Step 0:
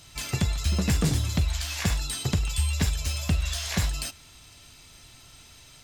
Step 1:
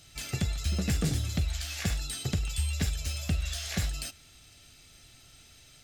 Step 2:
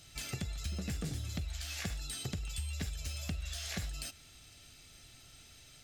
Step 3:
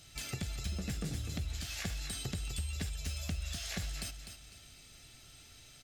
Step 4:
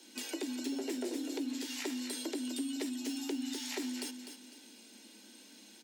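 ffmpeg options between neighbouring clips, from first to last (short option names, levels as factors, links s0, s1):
-af "equalizer=f=990:w=6.6:g=-14.5,volume=0.596"
-af "acompressor=threshold=0.0158:ratio=3,volume=0.841"
-af "aecho=1:1:251|502|753|1004:0.376|0.113|0.0338|0.0101"
-af "afreqshift=200"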